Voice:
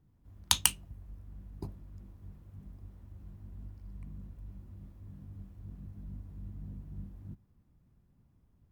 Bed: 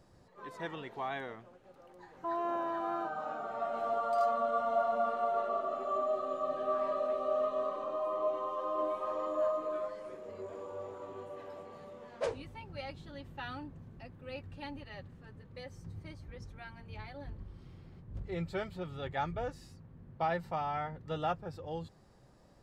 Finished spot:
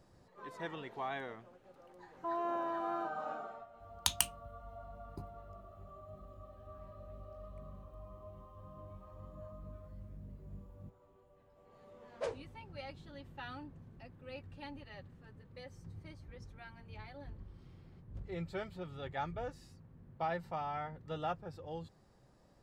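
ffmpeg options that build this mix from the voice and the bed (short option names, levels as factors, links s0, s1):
-filter_complex "[0:a]adelay=3550,volume=0.501[s0];[1:a]volume=5.96,afade=t=out:st=3.32:d=0.34:silence=0.105925,afade=t=in:st=11.54:d=0.65:silence=0.133352[s1];[s0][s1]amix=inputs=2:normalize=0"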